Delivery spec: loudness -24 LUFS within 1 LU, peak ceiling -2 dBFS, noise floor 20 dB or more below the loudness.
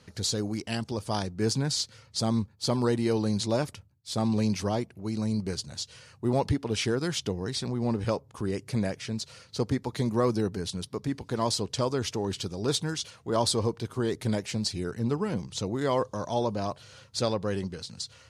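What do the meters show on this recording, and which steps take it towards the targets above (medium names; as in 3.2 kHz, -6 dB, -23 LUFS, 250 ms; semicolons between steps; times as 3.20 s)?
loudness -30.0 LUFS; peak level -12.5 dBFS; loudness target -24.0 LUFS
-> trim +6 dB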